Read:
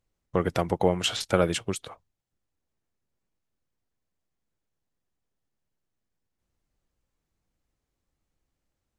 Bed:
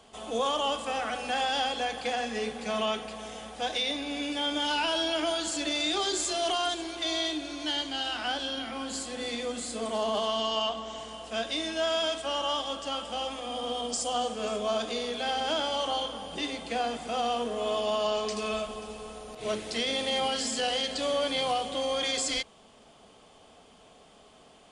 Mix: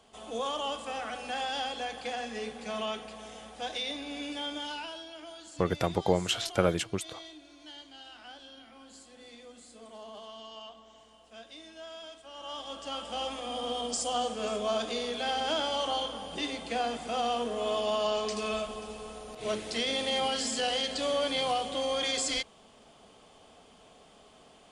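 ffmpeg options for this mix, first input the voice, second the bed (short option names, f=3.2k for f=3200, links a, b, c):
-filter_complex "[0:a]adelay=5250,volume=-3dB[a];[1:a]volume=11dB,afade=t=out:st=4.33:d=0.72:silence=0.251189,afade=t=in:st=12.32:d=0.93:silence=0.158489[b];[a][b]amix=inputs=2:normalize=0"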